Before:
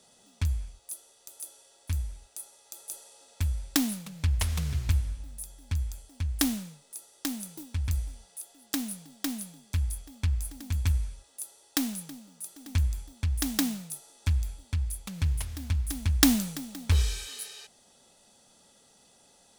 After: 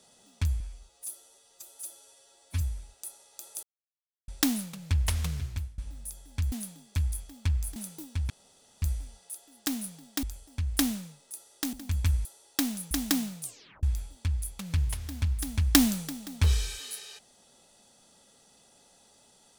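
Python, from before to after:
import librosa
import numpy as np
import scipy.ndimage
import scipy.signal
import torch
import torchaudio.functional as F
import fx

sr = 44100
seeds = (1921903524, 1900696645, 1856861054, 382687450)

y = fx.edit(x, sr, fx.stretch_span(start_s=0.6, length_s=1.34, factor=1.5),
    fx.silence(start_s=2.96, length_s=0.65),
    fx.fade_out_to(start_s=4.51, length_s=0.6, floor_db=-23.5),
    fx.swap(start_s=5.85, length_s=1.5, other_s=9.3, other_length_s=1.24),
    fx.insert_room_tone(at_s=7.89, length_s=0.52),
    fx.cut(start_s=11.06, length_s=0.37),
    fx.cut(start_s=12.09, length_s=1.3),
    fx.tape_stop(start_s=13.9, length_s=0.41), tone=tone)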